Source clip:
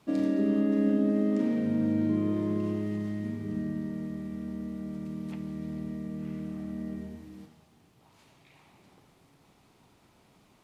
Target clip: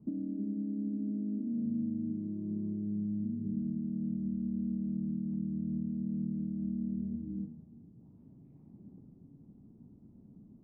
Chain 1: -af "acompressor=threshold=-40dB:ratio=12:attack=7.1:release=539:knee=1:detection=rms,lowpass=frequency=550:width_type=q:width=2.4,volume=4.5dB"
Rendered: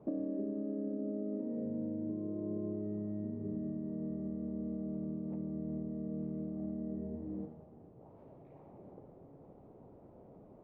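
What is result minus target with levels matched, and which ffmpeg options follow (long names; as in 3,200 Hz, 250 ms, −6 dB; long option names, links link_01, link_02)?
500 Hz band +15.0 dB
-af "acompressor=threshold=-40dB:ratio=12:attack=7.1:release=539:knee=1:detection=rms,lowpass=frequency=230:width_type=q:width=2.4,volume=4.5dB"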